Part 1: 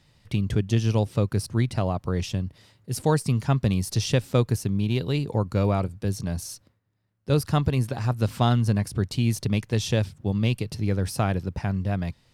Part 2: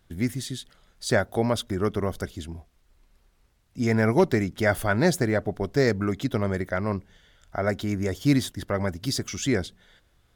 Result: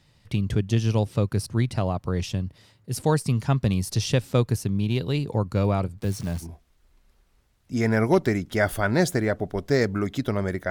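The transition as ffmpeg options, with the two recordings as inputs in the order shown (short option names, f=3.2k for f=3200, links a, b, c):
-filter_complex "[0:a]asplit=3[a][b][c];[a]afade=t=out:st=5.97:d=0.02[d];[b]acrusher=bits=8:dc=4:mix=0:aa=0.000001,afade=t=in:st=5.97:d=0.02,afade=t=out:st=6.47:d=0.02[e];[c]afade=t=in:st=6.47:d=0.02[f];[d][e][f]amix=inputs=3:normalize=0,apad=whole_dur=10.7,atrim=end=10.7,atrim=end=6.47,asetpts=PTS-STARTPTS[g];[1:a]atrim=start=2.43:end=6.76,asetpts=PTS-STARTPTS[h];[g][h]acrossfade=d=0.1:c1=tri:c2=tri"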